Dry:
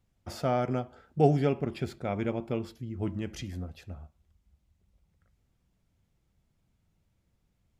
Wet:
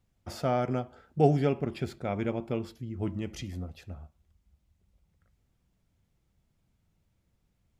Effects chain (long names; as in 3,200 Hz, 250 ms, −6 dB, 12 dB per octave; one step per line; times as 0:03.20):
0:03.14–0:03.78: notch filter 1,600 Hz, Q 6.3